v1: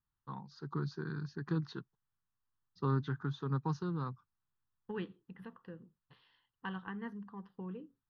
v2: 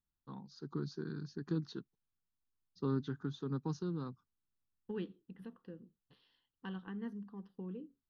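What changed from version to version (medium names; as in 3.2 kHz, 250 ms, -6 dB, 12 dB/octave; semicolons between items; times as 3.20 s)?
master: add ten-band graphic EQ 125 Hz -7 dB, 250 Hz +4 dB, 1 kHz -8 dB, 2 kHz -7 dB, 8 kHz +5 dB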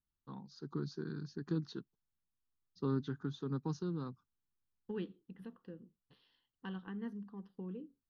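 no change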